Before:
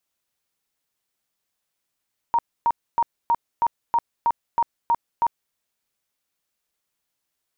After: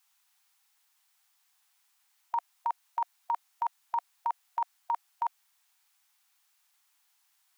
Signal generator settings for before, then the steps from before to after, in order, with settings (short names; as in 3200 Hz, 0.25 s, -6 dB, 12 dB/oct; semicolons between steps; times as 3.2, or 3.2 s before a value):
tone bursts 936 Hz, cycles 44, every 0.32 s, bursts 10, -15.5 dBFS
negative-ratio compressor -28 dBFS, ratio -1; brick-wall FIR high-pass 710 Hz